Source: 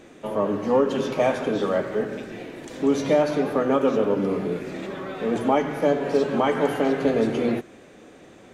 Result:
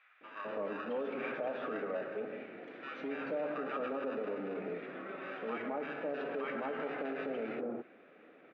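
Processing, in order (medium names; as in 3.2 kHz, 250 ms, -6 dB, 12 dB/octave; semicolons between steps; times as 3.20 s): in parallel at -8 dB: sample-and-hold 41×; on the sum: bands offset in time highs, lows 210 ms, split 1.1 kHz; peak limiter -17.5 dBFS, peak gain reduction 10 dB; cabinet simulation 340–2600 Hz, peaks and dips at 360 Hz -4 dB, 920 Hz -3 dB, 1.3 kHz +6 dB, 2.3 kHz +3 dB; trim -9 dB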